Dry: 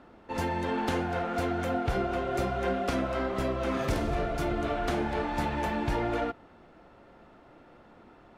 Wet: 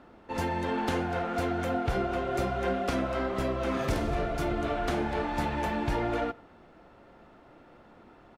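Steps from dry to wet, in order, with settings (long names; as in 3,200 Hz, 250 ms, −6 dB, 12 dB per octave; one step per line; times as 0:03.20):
far-end echo of a speakerphone 90 ms, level −23 dB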